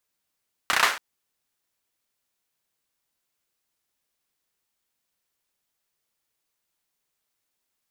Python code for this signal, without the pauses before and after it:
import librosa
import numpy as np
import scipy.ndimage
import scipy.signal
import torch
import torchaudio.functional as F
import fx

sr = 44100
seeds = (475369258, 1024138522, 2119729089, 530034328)

y = fx.drum_clap(sr, seeds[0], length_s=0.28, bursts=5, spacing_ms=32, hz=1400.0, decay_s=0.41)